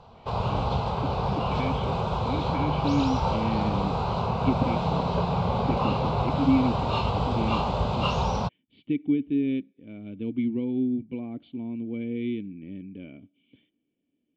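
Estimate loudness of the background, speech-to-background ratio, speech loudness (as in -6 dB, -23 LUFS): -27.0 LUFS, -3.5 dB, -30.5 LUFS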